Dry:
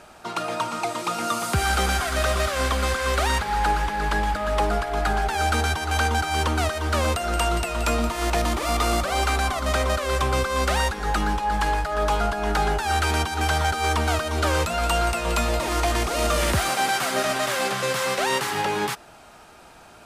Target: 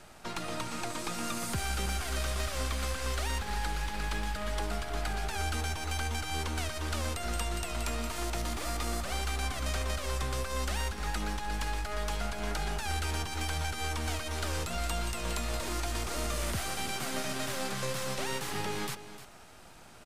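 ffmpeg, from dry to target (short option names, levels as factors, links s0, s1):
-filter_complex "[0:a]acrossover=split=450|1900[s0][s1][s2];[s0]acompressor=threshold=0.0282:ratio=4[s3];[s1]acompressor=threshold=0.0224:ratio=4[s4];[s2]acompressor=threshold=0.02:ratio=4[s5];[s3][s4][s5]amix=inputs=3:normalize=0,acrossover=split=250|4000[s6][s7][s8];[s7]aeval=exprs='max(val(0),0)':c=same[s9];[s6][s9][s8]amix=inputs=3:normalize=0,aecho=1:1:303:0.211,volume=0.75"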